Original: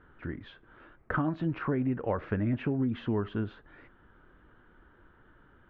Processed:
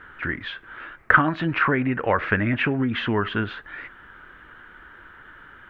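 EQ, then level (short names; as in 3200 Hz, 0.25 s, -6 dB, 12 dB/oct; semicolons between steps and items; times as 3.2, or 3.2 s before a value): bell 1900 Hz +14 dB 2.1 oct; high shelf 3100 Hz +8.5 dB; +4.5 dB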